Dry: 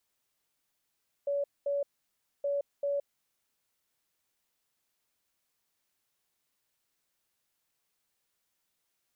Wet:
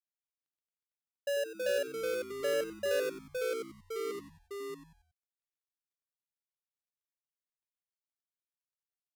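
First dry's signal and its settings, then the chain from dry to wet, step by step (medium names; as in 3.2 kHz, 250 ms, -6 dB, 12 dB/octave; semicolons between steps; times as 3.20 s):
beep pattern sine 567 Hz, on 0.17 s, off 0.22 s, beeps 2, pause 0.61 s, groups 2, -27.5 dBFS
dead-time distortion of 0.27 ms; ever faster or slower copies 168 ms, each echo -2 st, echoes 3; frequency-shifting echo 92 ms, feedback 42%, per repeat -120 Hz, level -12.5 dB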